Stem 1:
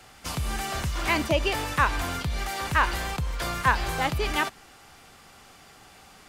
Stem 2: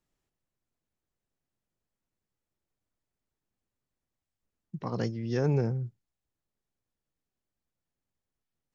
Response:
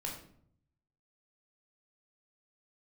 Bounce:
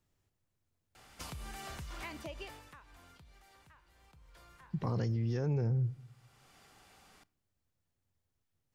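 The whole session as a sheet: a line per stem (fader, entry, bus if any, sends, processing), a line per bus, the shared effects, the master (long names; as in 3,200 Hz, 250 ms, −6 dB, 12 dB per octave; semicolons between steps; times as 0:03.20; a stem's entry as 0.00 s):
0:02.44 −8.5 dB → 0:02.66 −20.5 dB → 0:03.95 −20.5 dB → 0:04.40 −11 dB, 0.95 s, send −19 dB, downward compressor 6 to 1, threshold −34 dBFS, peak gain reduction 17 dB; automatic ducking −17 dB, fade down 1.85 s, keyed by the second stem
+1.5 dB, 0.00 s, send −22.5 dB, parametric band 93 Hz +12.5 dB 0.72 octaves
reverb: on, RT60 0.60 s, pre-delay 13 ms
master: brickwall limiter −26 dBFS, peak gain reduction 12.5 dB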